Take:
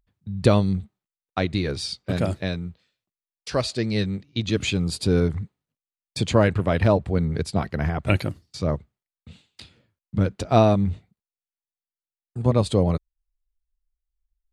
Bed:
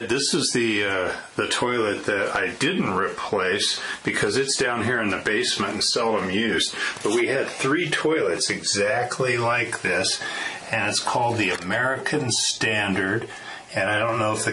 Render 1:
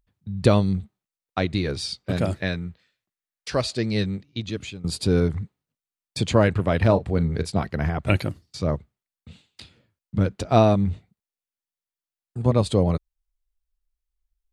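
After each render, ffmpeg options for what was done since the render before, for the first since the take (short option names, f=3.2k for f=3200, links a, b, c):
-filter_complex "[0:a]asettb=1/sr,asplit=3[a][b][c];[a]atrim=end=2.334[d];[b]atrim=start=2.33:end=3.51,asetpts=PTS-STARTPTS,afade=t=in:d=0.004:c=qsin,afade=t=out:st=1.176:d=0.004:c=qsin,equalizer=f=1.8k:t=o:w=0.77:g=6.5[e];[c]atrim=start=3.506[f];[d][e]acrossfade=d=0.004:c1=hsin:c2=qsin[g];[g][f]acrossfade=d=0.004:c1=qsin:c2=hsin,asettb=1/sr,asplit=3[h][i][j];[h]atrim=end=6.854[k];[i]atrim=start=6.85:end=7.52,asetpts=PTS-STARTPTS,afade=t=in:d=0.004:c=qsin,afade=t=out:st=0.666:d=0.004:c=qsin,asplit=2[l][m];[m]adelay=36,volume=-13.5dB[n];[l][n]amix=inputs=2:normalize=0,atrim=end_sample=29547[o];[j]atrim=start=7.516[p];[k][o]acrossfade=d=0.004:c1=hsin:c2=qsin[q];[q][p]acrossfade=d=0.004:c1=qsin:c2=hsin,asplit=2[r][s];[r]atrim=end=4.84,asetpts=PTS-STARTPTS,afade=t=out:st=4.07:d=0.77:silence=0.105925[t];[s]atrim=start=4.84,asetpts=PTS-STARTPTS,afade=t=in:d=0.004:c=hsin:silence=0.105925[u];[t][u]concat=n=2:v=0:a=1"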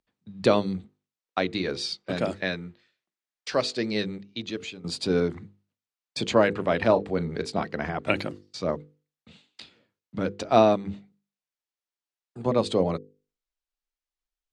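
-filter_complex "[0:a]acrossover=split=190 7800:gain=0.126 1 0.1[a][b][c];[a][b][c]amix=inputs=3:normalize=0,bandreject=f=50:t=h:w=6,bandreject=f=100:t=h:w=6,bandreject=f=150:t=h:w=6,bandreject=f=200:t=h:w=6,bandreject=f=250:t=h:w=6,bandreject=f=300:t=h:w=6,bandreject=f=350:t=h:w=6,bandreject=f=400:t=h:w=6,bandreject=f=450:t=h:w=6,bandreject=f=500:t=h:w=6"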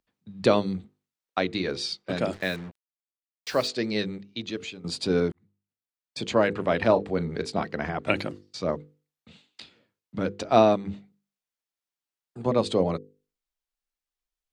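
-filter_complex "[0:a]asettb=1/sr,asplit=3[a][b][c];[a]atrim=end=2.334[d];[b]atrim=start=2.33:end=3.68,asetpts=PTS-STARTPTS,afade=t=in:d=0.004:c=qsin,afade=t=out:st=1.346:d=0.004:c=qsin,acrusher=bits=6:mix=0:aa=0.5[e];[c]atrim=start=3.676[f];[d][e]acrossfade=d=0.004:c1=hsin:c2=qsin[g];[g][f]acrossfade=d=0.004:c1=qsin:c2=hsin,asplit=2[h][i];[h]atrim=end=5.32,asetpts=PTS-STARTPTS,afade=t=out:st=5.316:d=0.004:c=hsin[j];[i]atrim=start=5.32,asetpts=PTS-STARTPTS,afade=t=in:d=1.33[k];[j][k]concat=n=2:v=0:a=1"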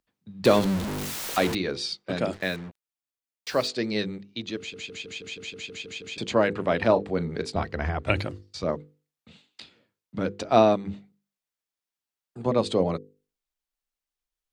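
-filter_complex "[0:a]asettb=1/sr,asplit=3[a][b][c];[a]atrim=end=0.454[d];[b]atrim=start=0.45:end=1.55,asetpts=PTS-STARTPTS,afade=t=in:d=0.004:c=qsin,afade=t=out:st=1.096:d=0.004:c=qsin,aeval=exprs='val(0)+0.5*0.0596*sgn(val(0))':c=same[e];[c]atrim=start=1.546[f];[d][e]acrossfade=d=0.004:c1=hsin:c2=qsin[g];[g][f]acrossfade=d=0.004:c1=qsin:c2=hsin,asettb=1/sr,asplit=3[h][i][j];[h]atrim=end=7.554[k];[i]atrim=start=7.55:end=8.64,asetpts=PTS-STARTPTS,afade=t=in:d=0.004:c=qsin,afade=t=out:st=1.086:d=0.004:c=qsin,lowshelf=f=120:t=q:w=1.5:g=11.5[l];[j]atrim=start=8.636[m];[k][l]acrossfade=d=0.004:c1=hsin:c2=qsin[n];[n][m]acrossfade=d=0.004:c1=qsin:c2=hsin,asplit=11[o][p][q][r][s][t][u][v][w][x][y];[o]atrim=end=4.742[z];[p]atrim=start=4.578:end=4.742[aa];[q]atrim=start=4.578:end=4.742[ab];[r]atrim=start=4.578:end=4.742[ac];[s]atrim=start=4.578:end=4.742[ad];[t]atrim=start=4.578:end=4.742[ae];[u]atrim=start=4.578:end=4.742[af];[v]atrim=start=4.578:end=4.742[ag];[w]atrim=start=4.578:end=4.742[ah];[x]atrim=start=4.578:end=4.742[ai];[y]atrim=start=6.178[aj];[z][aa]acrossfade=d=0.004:c1=hsin:c2=hsin[ak];[ak][ab]acrossfade=d=0.004:c1=hsin:c2=hsin[al];[al][ac]acrossfade=d=0.004:c1=hsin:c2=hsin[am];[am][ad]acrossfade=d=0.004:c1=hsin:c2=hsin[an];[an][ae]acrossfade=d=0.004:c1=hsin:c2=hsin[ao];[ao][af]acrossfade=d=0.004:c1=hsin:c2=hsin[ap];[ap][ag]acrossfade=d=0.004:c1=hsin:c2=hsin[aq];[aq][ah]acrossfade=d=0.004:c1=hsin:c2=hsin[ar];[ar][ai]acrossfade=d=0.004:c1=hsin:c2=hsin[as];[as][aj]acrossfade=d=0.004:c1=hsin:c2=hsin"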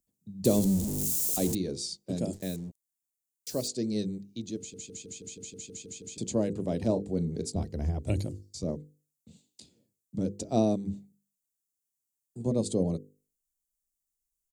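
-af "firequalizer=gain_entry='entry(200,0);entry(1300,-26);entry(7000,7)':delay=0.05:min_phase=1"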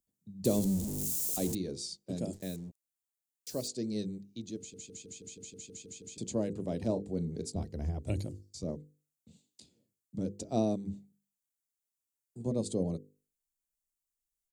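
-af "volume=-4.5dB"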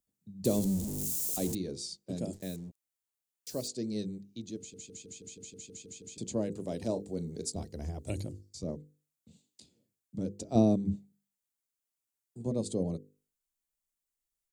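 -filter_complex "[0:a]asettb=1/sr,asplit=3[a][b][c];[a]atrim=end=6.524[d];[b]atrim=start=6.52:end=8.2,asetpts=PTS-STARTPTS,afade=t=in:d=0.004:c=qsin,afade=t=out:st=1.676:d=0.004:c=qsin,bass=f=250:g=-4,treble=f=4k:g=7[e];[c]atrim=start=8.196[f];[d][e]acrossfade=d=0.004:c1=hsin:c2=qsin[g];[g][f]acrossfade=d=0.004:c1=qsin:c2=hsin,asettb=1/sr,asplit=3[h][i][j];[h]atrim=end=10.554[k];[i]atrim=start=10.55:end=10.96,asetpts=PTS-STARTPTS,afade=t=in:d=0.004:c=qsin,afade=t=out:st=0.406:d=0.004:c=qsin,lowshelf=f=420:g=8.5[l];[j]atrim=start=10.956[m];[k][l]acrossfade=d=0.004:c1=hsin:c2=qsin[n];[n][m]acrossfade=d=0.004:c1=qsin:c2=hsin"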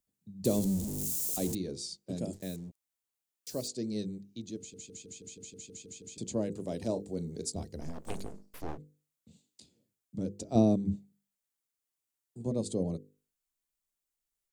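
-filter_complex "[0:a]asplit=3[a][b][c];[a]afade=t=out:st=7.8:d=0.02[d];[b]aeval=exprs='abs(val(0))':c=same,afade=t=in:st=7.8:d=0.02,afade=t=out:st=8.77:d=0.02[e];[c]afade=t=in:st=8.77:d=0.02[f];[d][e][f]amix=inputs=3:normalize=0"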